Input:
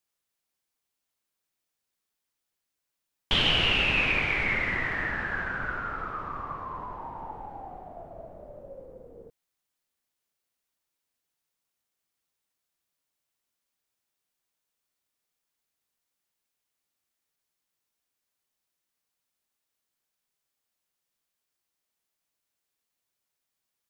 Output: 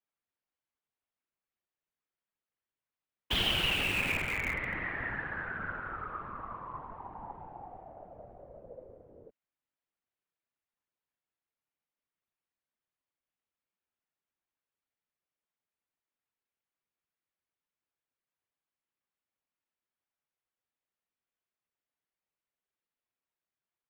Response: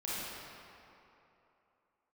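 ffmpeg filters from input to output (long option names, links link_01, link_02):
-filter_complex "[0:a]afftfilt=real='hypot(re,im)*cos(2*PI*random(0))':imag='hypot(re,im)*sin(2*PI*random(1))':win_size=512:overlap=0.75,acrossover=split=160|3300[link_01][link_02][link_03];[link_03]acrusher=bits=6:mix=0:aa=0.000001[link_04];[link_01][link_02][link_04]amix=inputs=3:normalize=0"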